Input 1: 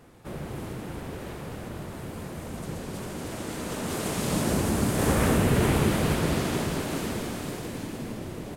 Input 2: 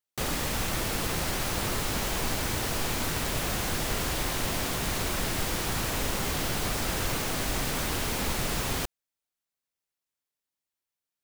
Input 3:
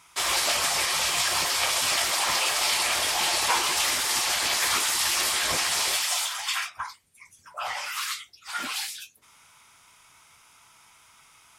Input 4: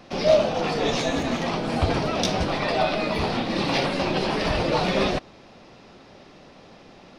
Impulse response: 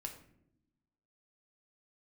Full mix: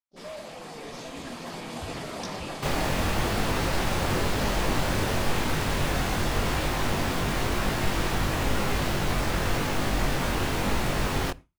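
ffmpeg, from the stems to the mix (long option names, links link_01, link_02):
-filter_complex "[1:a]flanger=delay=19.5:depth=2.7:speed=0.95,adelay=2450,volume=0.5dB,asplit=2[link_01][link_02];[link_02]volume=-12.5dB[link_03];[2:a]volume=-14dB,asplit=2[link_04][link_05];[link_05]volume=-11.5dB[link_06];[3:a]afwtdn=0.0631,alimiter=limit=-17.5dB:level=0:latency=1,aexciter=amount=13.4:drive=5.5:freq=3800,volume=-15.5dB[link_07];[link_04]bandreject=frequency=5500:width=12,alimiter=level_in=11.5dB:limit=-24dB:level=0:latency=1,volume=-11.5dB,volume=0dB[link_08];[4:a]atrim=start_sample=2205[link_09];[link_03][link_06]amix=inputs=2:normalize=0[link_10];[link_10][link_09]afir=irnorm=-1:irlink=0[link_11];[link_01][link_07][link_08][link_11]amix=inputs=4:normalize=0,agate=range=-33dB:threshold=-38dB:ratio=3:detection=peak,highshelf=frequency=4200:gain=-11.5,dynaudnorm=framelen=190:gausssize=13:maxgain=6dB"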